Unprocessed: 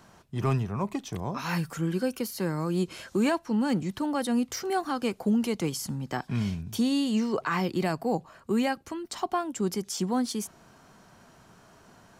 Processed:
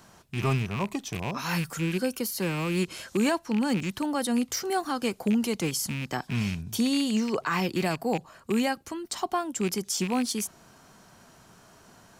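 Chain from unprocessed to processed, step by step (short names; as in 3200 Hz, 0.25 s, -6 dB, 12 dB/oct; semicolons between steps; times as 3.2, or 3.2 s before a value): rattling part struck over -32 dBFS, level -27 dBFS; high shelf 4000 Hz +6.5 dB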